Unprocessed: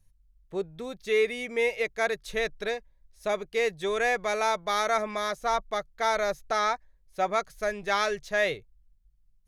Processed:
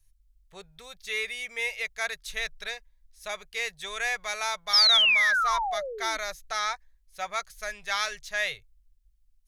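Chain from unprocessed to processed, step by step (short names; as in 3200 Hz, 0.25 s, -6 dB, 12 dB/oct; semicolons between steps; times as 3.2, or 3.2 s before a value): painted sound fall, 4.73–6.18, 280–5500 Hz -22 dBFS; passive tone stack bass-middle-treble 10-0-10; gain +4.5 dB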